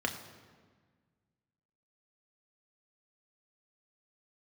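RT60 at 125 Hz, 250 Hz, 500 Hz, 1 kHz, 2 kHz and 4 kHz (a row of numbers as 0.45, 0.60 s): 2.2, 2.0, 1.6, 1.5, 1.4, 1.1 s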